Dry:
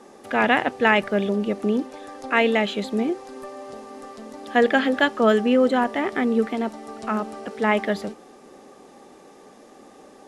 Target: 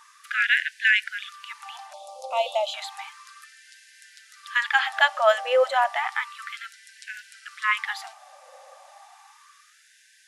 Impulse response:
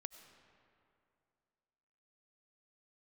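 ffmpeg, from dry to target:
-filter_complex "[0:a]asettb=1/sr,asplit=3[s0][s1][s2];[s0]atrim=end=1.934[s3];[s1]atrim=start=1.93:end=2.74,asetpts=PTS-STARTPTS,afade=t=in:d=0.004:c=qsin,afade=t=out:st=0.806:d=0.004:c=qsin,asuperstop=centerf=1700:order=4:qfactor=0.67[s4];[s2]atrim=start=2.736[s5];[s3][s4]acrossfade=d=0.004:c1=hsin:c2=qsin[s6];[s6][s5]acrossfade=d=0.004:c1=qsin:c2=hsin,asplit=2[s7][s8];[1:a]atrim=start_sample=2205,atrim=end_sample=4410[s9];[s8][s9]afir=irnorm=-1:irlink=0,volume=0.501[s10];[s7][s10]amix=inputs=2:normalize=0,afftfilt=real='re*gte(b*sr/1024,500*pow(1500/500,0.5+0.5*sin(2*PI*0.32*pts/sr)))':imag='im*gte(b*sr/1024,500*pow(1500/500,0.5+0.5*sin(2*PI*0.32*pts/sr)))':win_size=1024:overlap=0.75"

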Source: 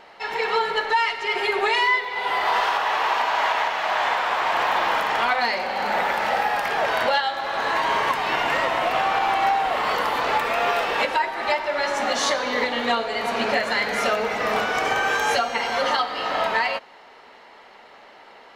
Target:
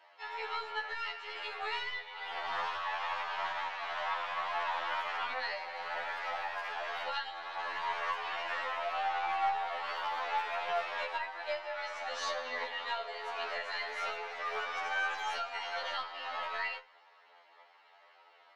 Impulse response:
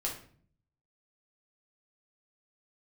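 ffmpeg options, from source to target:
-filter_complex "[0:a]highpass=350,acrossover=split=530 5900:gain=0.224 1 0.158[s0][s1][s2];[s0][s1][s2]amix=inputs=3:normalize=0,aeval=exprs='0.316*(cos(1*acos(clip(val(0)/0.316,-1,1)))-cos(1*PI/2))+0.0224*(cos(2*acos(clip(val(0)/0.316,-1,1)))-cos(2*PI/2))+0.00398*(cos(3*acos(clip(val(0)/0.316,-1,1)))-cos(3*PI/2))':c=same,flanger=delay=3.1:depth=8.9:regen=64:speed=0.2:shape=triangular,asplit=2[s3][s4];[1:a]atrim=start_sample=2205,afade=t=out:st=0.3:d=0.01,atrim=end_sample=13671,lowshelf=f=80:g=-12[s5];[s4][s5]afir=irnorm=-1:irlink=0,volume=0.188[s6];[s3][s6]amix=inputs=2:normalize=0,afftfilt=real='re*2*eq(mod(b,4),0)':imag='im*2*eq(mod(b,4),0)':win_size=2048:overlap=0.75,volume=0.422"

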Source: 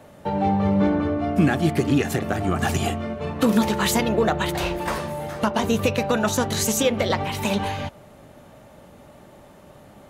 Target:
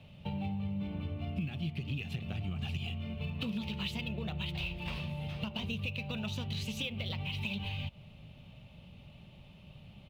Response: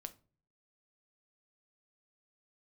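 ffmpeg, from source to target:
-af "firequalizer=gain_entry='entry(160,0);entry(290,-17);entry(910,-16);entry(1700,-20);entry(2600,4);entry(6800,-22)':delay=0.05:min_phase=1,acompressor=threshold=0.02:ratio=6" -ar 44100 -c:a adpcm_ima_wav

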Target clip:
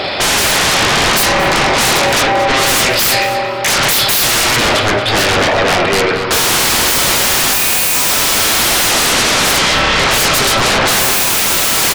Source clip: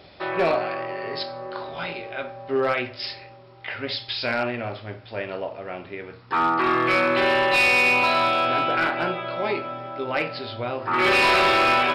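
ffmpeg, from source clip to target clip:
-filter_complex "[0:a]asplit=2[s0][s1];[s1]highpass=f=720:p=1,volume=5.01,asoftclip=type=tanh:threshold=0.188[s2];[s0][s2]amix=inputs=2:normalize=0,lowpass=f=5300:p=1,volume=0.501,aeval=exprs='0.188*sin(PI/2*6.31*val(0)/0.188)':c=same,asplit=2[s3][s4];[s4]adelay=228,lowpass=f=2700:p=1,volume=0.501,asplit=2[s5][s6];[s6]adelay=228,lowpass=f=2700:p=1,volume=0.42,asplit=2[s7][s8];[s8]adelay=228,lowpass=f=2700:p=1,volume=0.42,asplit=2[s9][s10];[s10]adelay=228,lowpass=f=2700:p=1,volume=0.42,asplit=2[s11][s12];[s12]adelay=228,lowpass=f=2700:p=1,volume=0.42[s13];[s3][s5][s7][s9][s11][s13]amix=inputs=6:normalize=0,volume=1.78"

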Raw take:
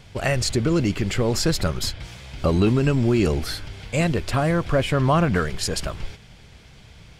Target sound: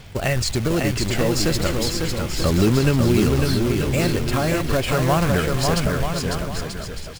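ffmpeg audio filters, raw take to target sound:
-filter_complex "[0:a]asplit=2[s0][s1];[s1]acompressor=threshold=0.0355:ratio=6,volume=0.794[s2];[s0][s2]amix=inputs=2:normalize=0,acrusher=bits=3:mode=log:mix=0:aa=0.000001,aphaser=in_gain=1:out_gain=1:delay=3.8:decay=0.25:speed=0.35:type=sinusoidal,aecho=1:1:550|935|1204|1393|1525:0.631|0.398|0.251|0.158|0.1,volume=0.75"

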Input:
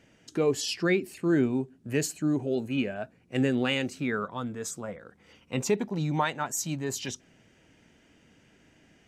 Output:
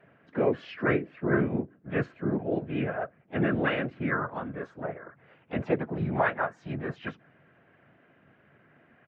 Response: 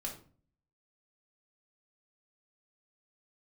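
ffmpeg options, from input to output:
-filter_complex "[0:a]afftfilt=real='hypot(re,im)*cos(2*PI*random(0))':imag='hypot(re,im)*sin(2*PI*random(1))':win_size=512:overlap=0.75,highpass=130,equalizer=f=140:t=q:w=4:g=9,equalizer=f=670:t=q:w=4:g=10,equalizer=f=1600:t=q:w=4:g=10,lowpass=f=2500:w=0.5412,lowpass=f=2500:w=1.3066,asplit=4[s0][s1][s2][s3];[s1]asetrate=29433,aresample=44100,atempo=1.49831,volume=0.355[s4];[s2]asetrate=37084,aresample=44100,atempo=1.18921,volume=0.501[s5];[s3]asetrate=55563,aresample=44100,atempo=0.793701,volume=0.178[s6];[s0][s4][s5][s6]amix=inputs=4:normalize=0,volume=1.33"

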